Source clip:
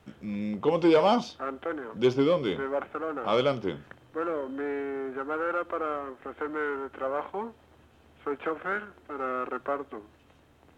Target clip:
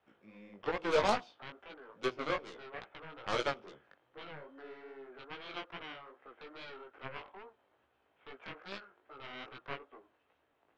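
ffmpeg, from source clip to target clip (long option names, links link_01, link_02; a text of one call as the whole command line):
ffmpeg -i in.wav -filter_complex "[0:a]acrossover=split=380 3500:gain=0.178 1 0.2[link_01][link_02][link_03];[link_01][link_02][link_03]amix=inputs=3:normalize=0,aeval=exprs='0.224*(cos(1*acos(clip(val(0)/0.224,-1,1)))-cos(1*PI/2))+0.0126*(cos(4*acos(clip(val(0)/0.224,-1,1)))-cos(4*PI/2))+0.0501*(cos(7*acos(clip(val(0)/0.224,-1,1)))-cos(7*PI/2))':channel_layout=same,flanger=delay=15:depth=5.4:speed=2.4,volume=-3.5dB" out.wav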